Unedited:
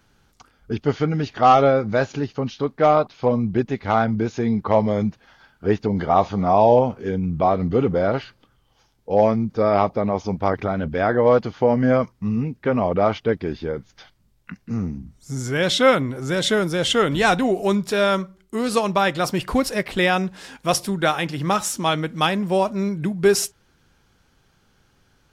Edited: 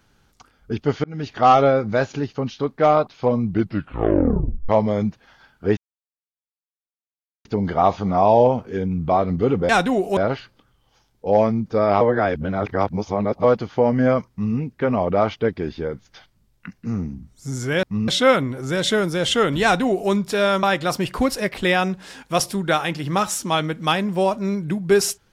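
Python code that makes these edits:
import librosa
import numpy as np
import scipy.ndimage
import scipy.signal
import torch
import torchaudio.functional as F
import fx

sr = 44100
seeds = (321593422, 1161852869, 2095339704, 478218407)

y = fx.edit(x, sr, fx.fade_in_span(start_s=1.04, length_s=0.28),
    fx.tape_stop(start_s=3.47, length_s=1.22),
    fx.insert_silence(at_s=5.77, length_s=1.68),
    fx.reverse_span(start_s=9.85, length_s=1.43),
    fx.duplicate(start_s=12.14, length_s=0.25, to_s=15.67),
    fx.duplicate(start_s=17.22, length_s=0.48, to_s=8.01),
    fx.cut(start_s=18.22, length_s=0.75), tone=tone)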